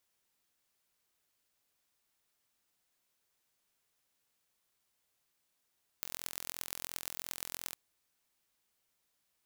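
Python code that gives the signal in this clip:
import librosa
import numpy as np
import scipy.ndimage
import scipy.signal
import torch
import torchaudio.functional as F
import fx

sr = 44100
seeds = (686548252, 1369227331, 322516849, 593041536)

y = fx.impulse_train(sr, length_s=1.72, per_s=42.9, accent_every=5, level_db=-9.0)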